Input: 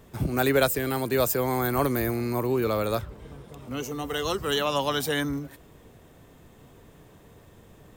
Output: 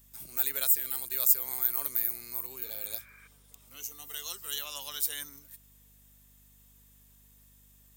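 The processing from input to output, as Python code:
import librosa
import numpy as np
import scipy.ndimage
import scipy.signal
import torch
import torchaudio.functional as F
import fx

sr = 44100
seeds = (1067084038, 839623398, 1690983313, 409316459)

y = fx.high_shelf(x, sr, hz=4700.0, db=6.5)
y = fx.spec_repair(y, sr, seeds[0], start_s=2.64, length_s=0.61, low_hz=910.0, high_hz=2500.0, source='before')
y = F.preemphasis(torch.from_numpy(y), 0.97).numpy()
y = fx.add_hum(y, sr, base_hz=50, snr_db=28)
y = y * librosa.db_to_amplitude(-3.5)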